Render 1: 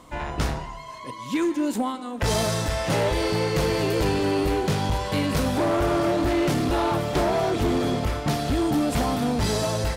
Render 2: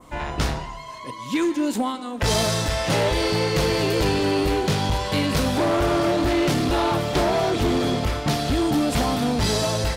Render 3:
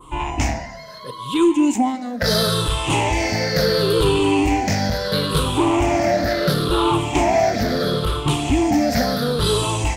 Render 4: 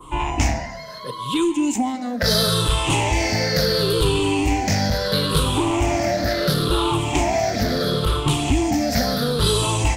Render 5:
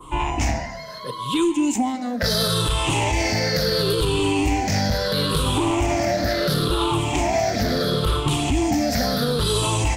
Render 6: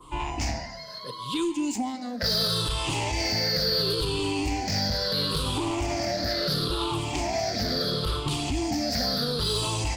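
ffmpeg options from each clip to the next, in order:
ffmpeg -i in.wav -af "adynamicequalizer=threshold=0.00891:dfrequency=4000:dqfactor=0.82:tfrequency=4000:tqfactor=0.82:attack=5:release=100:ratio=0.375:range=2:mode=boostabove:tftype=bell,volume=1.5dB" out.wav
ffmpeg -i in.wav -af "afftfilt=real='re*pow(10,16/40*sin(2*PI*(0.65*log(max(b,1)*sr/1024/100)/log(2)-(-0.73)*(pts-256)/sr)))':imag='im*pow(10,16/40*sin(2*PI*(0.65*log(max(b,1)*sr/1024/100)/log(2)-(-0.73)*(pts-256)/sr)))':win_size=1024:overlap=0.75" out.wav
ffmpeg -i in.wav -filter_complex "[0:a]acrossover=split=130|3000[link_01][link_02][link_03];[link_02]acompressor=threshold=-23dB:ratio=2.5[link_04];[link_01][link_04][link_03]amix=inputs=3:normalize=0,volume=2dB" out.wav
ffmpeg -i in.wav -af "alimiter=limit=-11.5dB:level=0:latency=1:release=32" out.wav
ffmpeg -i in.wav -filter_complex "[0:a]equalizer=frequency=4700:width_type=o:width=0.44:gain=11.5,acrossover=split=4100[link_01][link_02];[link_02]asoftclip=type=hard:threshold=-21.5dB[link_03];[link_01][link_03]amix=inputs=2:normalize=0,volume=-7.5dB" out.wav

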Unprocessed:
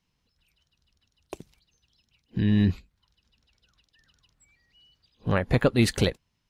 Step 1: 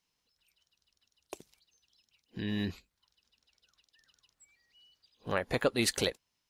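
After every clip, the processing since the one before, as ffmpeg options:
ffmpeg -i in.wav -af "bass=frequency=250:gain=-12,treble=frequency=4000:gain=6,volume=-4.5dB" out.wav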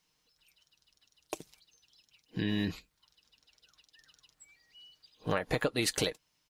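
ffmpeg -i in.wav -af "aecho=1:1:6.5:0.4,acompressor=threshold=-31dB:ratio=12,volume=5dB" out.wav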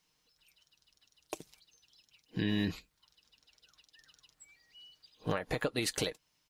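ffmpeg -i in.wav -af "alimiter=limit=-20.5dB:level=0:latency=1:release=224" out.wav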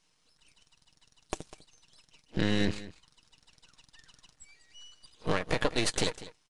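ffmpeg -i in.wav -af "aeval=exprs='max(val(0),0)':channel_layout=same,aecho=1:1:199:0.15,aresample=22050,aresample=44100,volume=8.5dB" out.wav

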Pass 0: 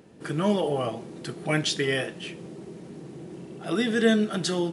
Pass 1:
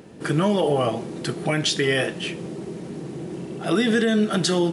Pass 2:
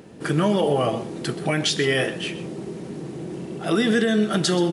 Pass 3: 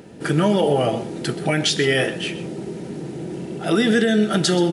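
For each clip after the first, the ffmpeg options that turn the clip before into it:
ffmpeg -i in.wav -af "alimiter=limit=-19dB:level=0:latency=1:release=128,volume=8dB" out.wav
ffmpeg -i in.wav -filter_complex "[0:a]asplit=2[link_01][link_02];[link_02]adelay=128.3,volume=-14dB,highshelf=frequency=4000:gain=-2.89[link_03];[link_01][link_03]amix=inputs=2:normalize=0" out.wav
ffmpeg -i in.wav -af "asuperstop=centerf=1100:order=4:qfactor=7.9,volume=2.5dB" out.wav

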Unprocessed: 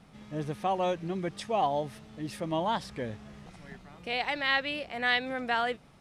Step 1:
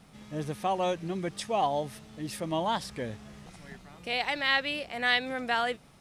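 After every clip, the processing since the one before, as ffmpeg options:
ffmpeg -i in.wav -af "highshelf=frequency=5400:gain=9" out.wav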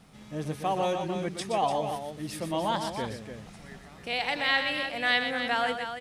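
ffmpeg -i in.wav -af "aecho=1:1:122|295:0.422|0.398" out.wav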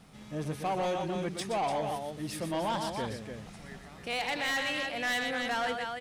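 ffmpeg -i in.wav -af "asoftclip=type=tanh:threshold=-26dB" out.wav

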